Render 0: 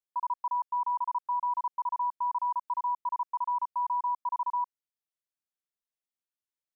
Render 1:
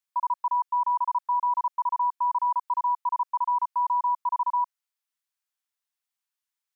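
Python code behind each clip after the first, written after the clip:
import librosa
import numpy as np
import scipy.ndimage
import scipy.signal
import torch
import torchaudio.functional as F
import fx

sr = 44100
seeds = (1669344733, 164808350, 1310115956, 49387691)

y = scipy.signal.sosfilt(scipy.signal.butter(4, 830.0, 'highpass', fs=sr, output='sos'), x)
y = y * librosa.db_to_amplitude(6.0)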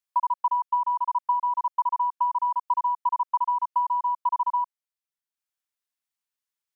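y = fx.transient(x, sr, attack_db=7, sustain_db=-5)
y = y * librosa.db_to_amplitude(-2.0)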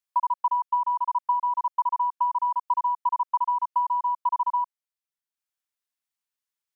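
y = x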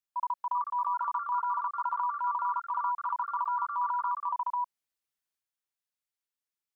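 y = fx.transient(x, sr, attack_db=-7, sustain_db=7)
y = fx.echo_pitch(y, sr, ms=415, semitones=3, count=2, db_per_echo=-6.0)
y = y * librosa.db_to_amplitude(-5.0)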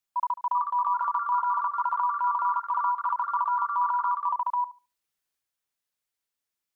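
y = fx.echo_filtered(x, sr, ms=72, feedback_pct=20, hz=1400.0, wet_db=-14.0)
y = y * librosa.db_to_amplitude(5.0)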